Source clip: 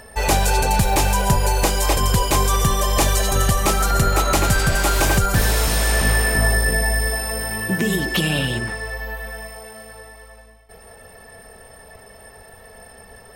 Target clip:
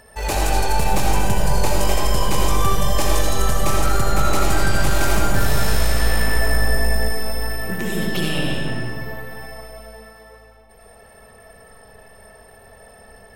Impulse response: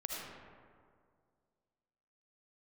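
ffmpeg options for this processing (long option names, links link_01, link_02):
-filter_complex "[0:a]aeval=exprs='0.631*(cos(1*acos(clip(val(0)/0.631,-1,1)))-cos(1*PI/2))+0.0562*(cos(6*acos(clip(val(0)/0.631,-1,1)))-cos(6*PI/2))+0.02*(cos(8*acos(clip(val(0)/0.631,-1,1)))-cos(8*PI/2))':channel_layout=same[link_01];[1:a]atrim=start_sample=2205[link_02];[link_01][link_02]afir=irnorm=-1:irlink=0,volume=-3.5dB"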